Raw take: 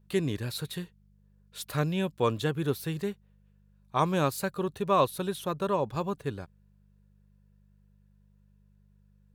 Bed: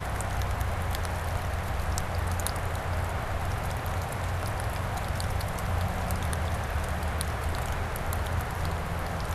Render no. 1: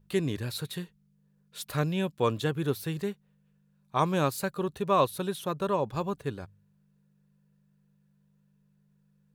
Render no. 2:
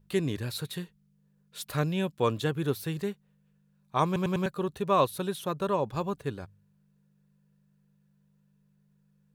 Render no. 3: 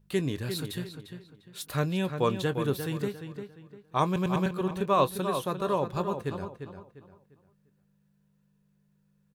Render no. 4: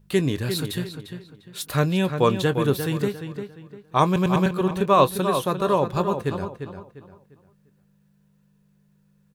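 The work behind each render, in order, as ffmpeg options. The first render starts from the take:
-af "bandreject=f=50:t=h:w=4,bandreject=f=100:t=h:w=4"
-filter_complex "[0:a]asplit=5[s0][s1][s2][s3][s4];[s0]atrim=end=4.162[s5];[s1]atrim=start=4.058:end=4.162[s6];[s2]atrim=start=4.058:end=4.162[s7];[s3]atrim=start=4.058:end=4.162[s8];[s4]atrim=start=4.458[s9];[s5][s6]acrossfade=d=0.004:c1=hsin:c2=hsin[s10];[s10][s7]acrossfade=d=0.004:c1=hsin:c2=hsin[s11];[s11][s8]acrossfade=d=0.004:c1=hsin:c2=hsin[s12];[s12][s9]acrossfade=d=0.004:c1=hsin:c2=hsin"
-filter_complex "[0:a]asplit=2[s0][s1];[s1]adelay=22,volume=0.2[s2];[s0][s2]amix=inputs=2:normalize=0,asplit=2[s3][s4];[s4]adelay=349,lowpass=f=3600:p=1,volume=0.398,asplit=2[s5][s6];[s6]adelay=349,lowpass=f=3600:p=1,volume=0.32,asplit=2[s7][s8];[s8]adelay=349,lowpass=f=3600:p=1,volume=0.32,asplit=2[s9][s10];[s10]adelay=349,lowpass=f=3600:p=1,volume=0.32[s11];[s3][s5][s7][s9][s11]amix=inputs=5:normalize=0"
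-af "volume=2.24"

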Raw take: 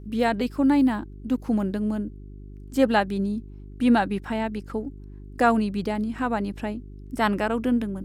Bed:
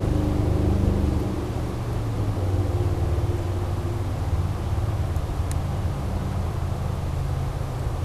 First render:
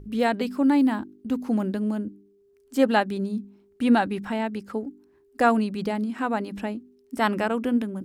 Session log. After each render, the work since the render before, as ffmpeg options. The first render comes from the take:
-af "bandreject=f=50:t=h:w=4,bandreject=f=100:t=h:w=4,bandreject=f=150:t=h:w=4,bandreject=f=200:t=h:w=4,bandreject=f=250:t=h:w=4,bandreject=f=300:t=h:w=4,bandreject=f=350:t=h:w=4"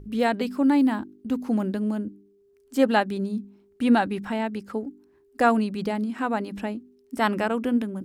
-af anull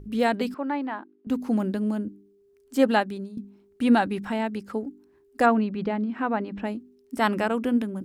-filter_complex "[0:a]asettb=1/sr,asplit=3[s0][s1][s2];[s0]atrim=end=0.544[s3];[s1]atrim=start=0.54:end=1.27,asetpts=PTS-STARTPTS,afade=t=in:d=0.004:c=qsin,afade=t=out:st=0.726:d=0.004:c=qsin,highpass=510,lowpass=2200[s4];[s2]atrim=start=1.266[s5];[s3][s4]acrossfade=d=0.004:c1=hsin:c2=qsin[s6];[s6][s5]acrossfade=d=0.004:c1=qsin:c2=hsin,asplit=3[s7][s8][s9];[s7]afade=t=out:st=5.45:d=0.02[s10];[s8]lowpass=2700,afade=t=in:st=5.45:d=0.02,afade=t=out:st=6.64:d=0.02[s11];[s9]afade=t=in:st=6.64:d=0.02[s12];[s10][s11][s12]amix=inputs=3:normalize=0,asplit=2[s13][s14];[s13]atrim=end=3.37,asetpts=PTS-STARTPTS,afade=t=out:st=2.92:d=0.45:silence=0.177828[s15];[s14]atrim=start=3.37,asetpts=PTS-STARTPTS,afade=t=in:d=0.004:c=hsin:silence=0.177828[s16];[s15][s16]concat=n=2:v=0:a=1"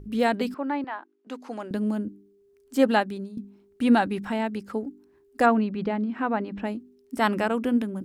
-filter_complex "[0:a]asettb=1/sr,asplit=3[s0][s1][s2];[s0]atrim=end=0.844[s3];[s1]atrim=start=0.84:end=1.71,asetpts=PTS-STARTPTS,afade=t=in:d=0.004:c=qsin,afade=t=out:st=0.866:d=0.004:c=qsin,highpass=540,lowpass=7300[s4];[s2]atrim=start=1.706[s5];[s3][s4]acrossfade=d=0.004:c1=hsin:c2=qsin[s6];[s6][s5]acrossfade=d=0.004:c1=qsin:c2=hsin"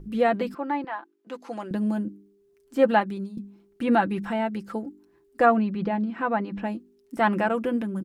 -filter_complex "[0:a]acrossover=split=2800[s0][s1];[s1]acompressor=threshold=0.00282:ratio=4:attack=1:release=60[s2];[s0][s2]amix=inputs=2:normalize=0,aecho=1:1:5.9:0.52"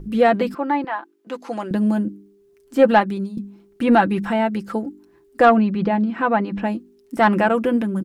-af "acontrast=79"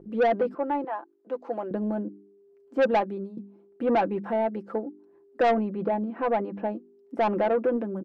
-af "bandpass=f=520:t=q:w=1.5:csg=0,asoftclip=type=tanh:threshold=0.141"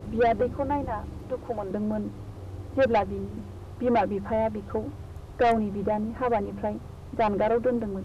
-filter_complex "[1:a]volume=0.168[s0];[0:a][s0]amix=inputs=2:normalize=0"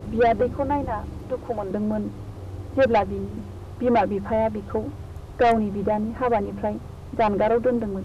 -af "volume=1.5"

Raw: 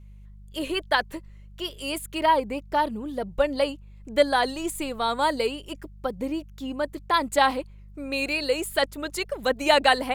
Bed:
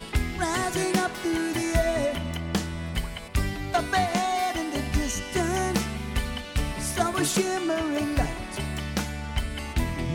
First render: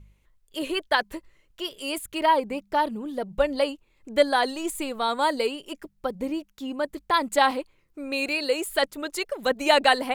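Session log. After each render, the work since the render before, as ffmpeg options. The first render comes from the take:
-af "bandreject=f=50:t=h:w=4,bandreject=f=100:t=h:w=4,bandreject=f=150:t=h:w=4,bandreject=f=200:t=h:w=4"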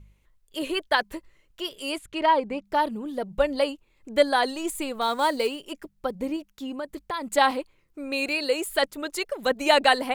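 -filter_complex "[0:a]asettb=1/sr,asplit=3[s0][s1][s2];[s0]atrim=end=1.964[s3];[s1]atrim=start=1.96:end=2.65,asetpts=PTS-STARTPTS,afade=t=in:d=0.004:c=qsin,afade=t=out:st=0.686:d=0.004:c=qsin,adynamicsmooth=sensitivity=0.5:basefreq=6600[s4];[s2]atrim=start=2.646[s5];[s3][s4]acrossfade=d=0.004:c1=hsin:c2=qsin[s6];[s6][s5]acrossfade=d=0.004:c1=qsin:c2=hsin,asettb=1/sr,asplit=3[s7][s8][s9];[s7]atrim=end=5.014[s10];[s8]atrim=start=5.01:end=5.64,asetpts=PTS-STARTPTS,afade=t=in:d=0.004:c=qsin,afade=t=out:st=0.626:d=0.004:c=qsin,acrusher=bits=6:mode=log:mix=0:aa=0.000001[s11];[s9]atrim=start=5.636[s12];[s10][s11]acrossfade=d=0.004:c1=hsin:c2=qsin[s13];[s13][s12]acrossfade=d=0.004:c1=qsin:c2=hsin,asettb=1/sr,asplit=3[s14][s15][s16];[s14]atrim=end=6.364[s17];[s15]atrim=start=6.36:end=7.27,asetpts=PTS-STARTPTS,afade=t=in:d=0.004:c=qsin,afade=t=out:st=0.906:d=0.004:c=qsin,acompressor=threshold=0.0355:ratio=3:attack=3.2:release=140:knee=1:detection=peak[s18];[s16]atrim=start=7.266[s19];[s17][s18]acrossfade=d=0.004:c1=hsin:c2=qsin[s20];[s20][s19]acrossfade=d=0.004:c1=qsin:c2=hsin"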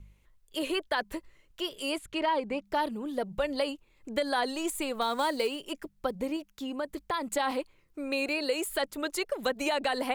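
-filter_complex "[0:a]alimiter=limit=0.168:level=0:latency=1:release=59,acrossover=split=370|1500[s0][s1][s2];[s0]acompressor=threshold=0.0141:ratio=4[s3];[s1]acompressor=threshold=0.0398:ratio=4[s4];[s2]acompressor=threshold=0.0224:ratio=4[s5];[s3][s4][s5]amix=inputs=3:normalize=0"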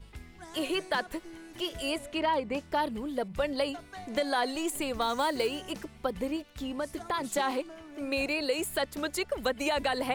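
-filter_complex "[1:a]volume=0.0944[s0];[0:a][s0]amix=inputs=2:normalize=0"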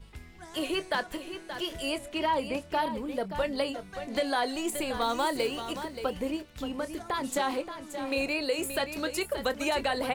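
-filter_complex "[0:a]asplit=2[s0][s1];[s1]adelay=26,volume=0.211[s2];[s0][s2]amix=inputs=2:normalize=0,aecho=1:1:577:0.316"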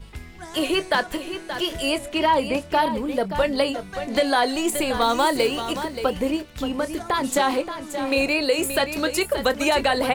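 -af "volume=2.66"

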